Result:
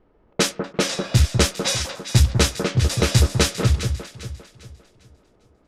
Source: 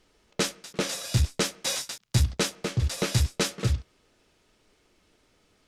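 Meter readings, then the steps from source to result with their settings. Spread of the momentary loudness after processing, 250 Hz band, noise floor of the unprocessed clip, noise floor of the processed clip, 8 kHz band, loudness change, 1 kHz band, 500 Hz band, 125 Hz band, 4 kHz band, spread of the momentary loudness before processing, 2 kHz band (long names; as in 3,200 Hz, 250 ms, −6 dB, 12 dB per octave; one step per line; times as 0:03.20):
15 LU, +8.0 dB, −67 dBFS, −59 dBFS, +6.5 dB, +7.5 dB, +8.0 dB, +8.0 dB, +8.0 dB, +7.0 dB, 5 LU, +7.5 dB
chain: low-pass that shuts in the quiet parts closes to 980 Hz, open at −23 dBFS
on a send: delay that swaps between a low-pass and a high-pass 200 ms, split 1,400 Hz, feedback 59%, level −6 dB
on the sum: level +7 dB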